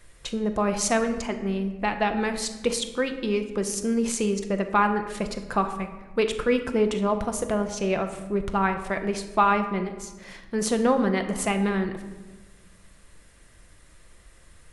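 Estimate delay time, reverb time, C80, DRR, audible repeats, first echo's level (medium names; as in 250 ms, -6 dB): no echo, 1.3 s, 11.5 dB, 6.0 dB, no echo, no echo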